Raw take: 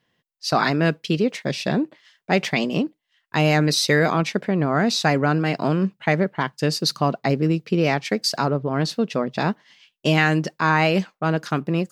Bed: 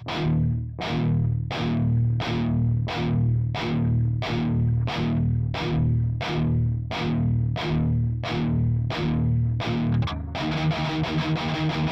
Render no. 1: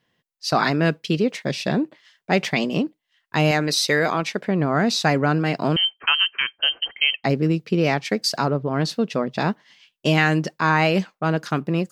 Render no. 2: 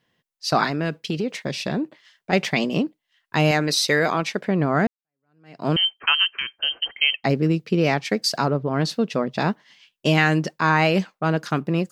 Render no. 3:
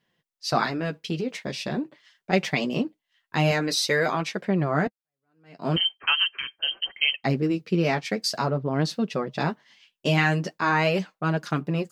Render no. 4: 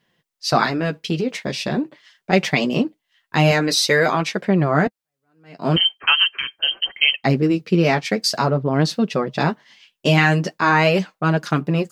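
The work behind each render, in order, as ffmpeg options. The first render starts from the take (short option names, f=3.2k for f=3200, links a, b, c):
-filter_complex "[0:a]asettb=1/sr,asplit=3[a][b][c];[a]atrim=end=3.514[d];[b]atrim=start=3.51:end=4.47,asetpts=PTS-STARTPTS,afade=t=in:d=0.004:c=qsin,afade=t=out:st=0.956:d=0.004:c=qsin,equalizer=f=110:t=o:w=2.7:g=-7.5[e];[c]atrim=start=4.466[f];[d][e]acrossfade=d=0.004:c1=hsin:c2=qsin[g];[g][f]acrossfade=d=0.004:c1=qsin:c2=hsin,asettb=1/sr,asplit=3[h][i][j];[h]atrim=end=5.764[k];[i]atrim=start=5.76:end=7.24,asetpts=PTS-STARTPTS,afade=t=in:d=0.004:c=qsin,afade=t=out:st=1.476:d=0.004:c=qsin,lowpass=f=2.8k:t=q:w=0.5098,lowpass=f=2.8k:t=q:w=0.6013,lowpass=f=2.8k:t=q:w=0.9,lowpass=f=2.8k:t=q:w=2.563,afreqshift=-3300[l];[j]atrim=start=7.236[m];[k][l]acrossfade=d=0.004:c1=hsin:c2=qsin[n];[n][m]acrossfade=d=0.004:c1=qsin:c2=hsin"
-filter_complex "[0:a]asettb=1/sr,asplit=3[a][b][c];[a]atrim=end=0.644[d];[b]atrim=start=0.64:end=2.33,asetpts=PTS-STARTPTS,afade=t=in:d=0.004:c=qsin,afade=t=out:st=1.686:d=0.004:c=qsin,acompressor=threshold=-21dB:ratio=3:attack=3.2:release=140:knee=1:detection=peak[e];[c]atrim=start=2.326[f];[d][e]acrossfade=d=0.004:c1=hsin:c2=qsin[g];[g][f]acrossfade=d=0.004:c1=qsin:c2=hsin,asettb=1/sr,asplit=3[h][i][j];[h]atrim=end=6.284[k];[i]atrim=start=6.28:end=6.71,asetpts=PTS-STARTPTS,afade=t=in:d=0.004:c=qsin,afade=t=out:st=0.426:d=0.004:c=qsin,acrossover=split=410|3000[l][m][n];[m]acompressor=threshold=-31dB:ratio=3:attack=3.2:release=140:knee=2.83:detection=peak[o];[l][o][n]amix=inputs=3:normalize=0[p];[j]atrim=start=6.706[q];[k][p]acrossfade=d=0.004:c1=hsin:c2=qsin[r];[r][q]acrossfade=d=0.004:c1=qsin:c2=hsin,asplit=2[s][t];[s]atrim=end=4.87,asetpts=PTS-STARTPTS,afade=t=out:st=4.866:d=0.004:c=hsin[u];[t]atrim=start=4.87,asetpts=PTS-STARTPTS,afade=t=in:d=0.82:c=exp[v];[u][v]concat=n=2:v=0:a=1"
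-af "flanger=delay=4.9:depth=7.2:regen=-25:speed=0.44:shape=triangular"
-af "volume=6.5dB,alimiter=limit=-2dB:level=0:latency=1"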